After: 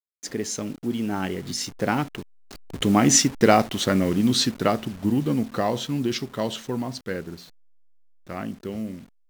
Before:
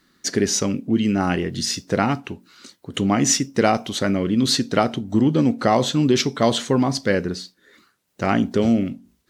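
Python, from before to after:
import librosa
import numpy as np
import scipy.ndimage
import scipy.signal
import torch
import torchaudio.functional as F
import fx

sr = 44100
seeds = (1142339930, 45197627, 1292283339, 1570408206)

y = fx.delta_hold(x, sr, step_db=-33.5)
y = fx.doppler_pass(y, sr, speed_mps=20, closest_m=19.0, pass_at_s=3.31)
y = F.gain(torch.from_numpy(y), 1.5).numpy()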